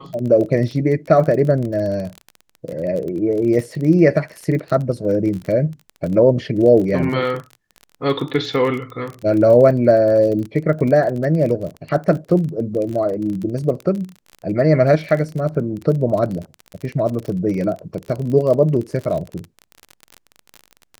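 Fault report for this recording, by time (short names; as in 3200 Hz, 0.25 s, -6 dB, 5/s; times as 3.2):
crackle 32/s -25 dBFS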